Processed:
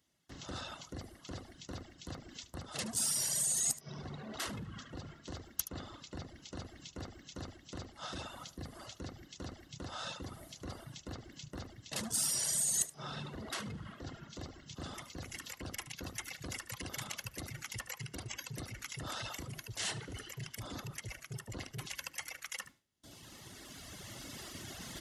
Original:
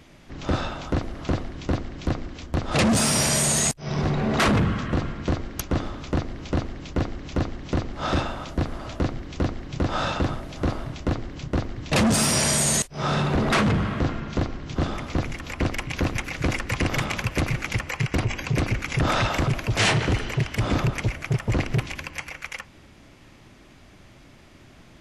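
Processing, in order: recorder AGC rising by 7.2 dB/s; de-hum 77.36 Hz, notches 32; gate with hold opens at -35 dBFS; reverse; compression 5:1, threshold -32 dBFS, peak gain reduction 13 dB; reverse; high-pass 57 Hz; pre-emphasis filter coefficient 0.8; band-stop 2.4 kHz, Q 6.3; on a send: delay 74 ms -8.5 dB; on the sum: reverb removal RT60 1.8 s; trim +4.5 dB

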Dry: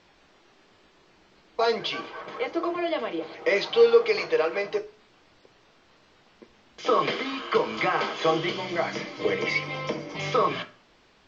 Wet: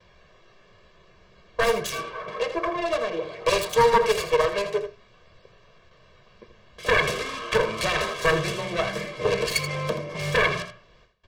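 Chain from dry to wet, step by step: self-modulated delay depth 0.71 ms; gate with hold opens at -50 dBFS; tone controls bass +6 dB, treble -5 dB; comb 1.8 ms, depth 82%; on a send: delay 81 ms -10.5 dB

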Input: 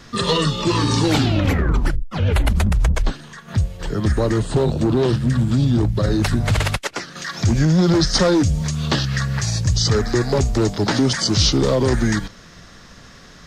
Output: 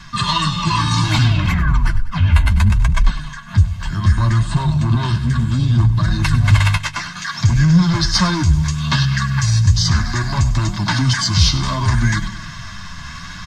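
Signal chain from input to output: Chebyshev band-stop 250–870 Hz, order 2; comb 1.9 ms, depth 62%; feedback delay 99 ms, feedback 47%, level -14.5 dB; in parallel at -5.5 dB: saturation -13 dBFS, distortion -15 dB; on the sum: flange 0.65 Hz, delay 5.1 ms, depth 8.4 ms, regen +37%; reverse; upward compressor, threshold -25 dBFS; reverse; treble shelf 8.6 kHz -9 dB; trim +4 dB

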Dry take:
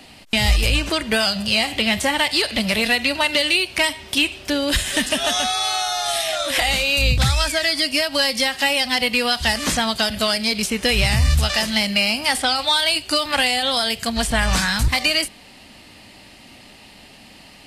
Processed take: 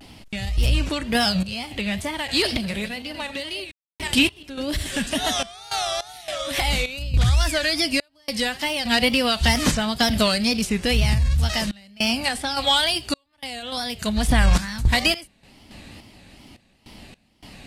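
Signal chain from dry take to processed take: 2.31–4.87 s: backward echo that repeats 118 ms, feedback 41%, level -9.5 dB; bass shelf 290 Hz +10 dB; peak limiter -7 dBFS, peak gain reduction 8 dB; random-step tremolo, depth 100%; wow and flutter 140 cents

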